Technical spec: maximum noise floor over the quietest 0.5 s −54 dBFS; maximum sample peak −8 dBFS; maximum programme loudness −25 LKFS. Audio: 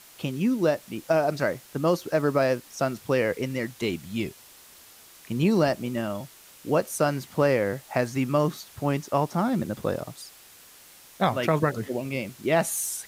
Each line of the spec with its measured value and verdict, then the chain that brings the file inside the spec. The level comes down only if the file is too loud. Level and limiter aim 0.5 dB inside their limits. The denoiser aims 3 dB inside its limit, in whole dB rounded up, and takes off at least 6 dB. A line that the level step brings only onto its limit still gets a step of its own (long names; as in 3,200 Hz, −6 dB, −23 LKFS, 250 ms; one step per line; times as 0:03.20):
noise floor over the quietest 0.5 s −51 dBFS: out of spec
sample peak −9.0 dBFS: in spec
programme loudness −26.5 LKFS: in spec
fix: broadband denoise 6 dB, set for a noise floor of −51 dBFS